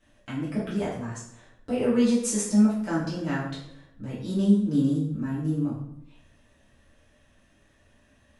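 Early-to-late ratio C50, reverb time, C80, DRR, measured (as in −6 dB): 3.5 dB, 0.70 s, 6.5 dB, −10.0 dB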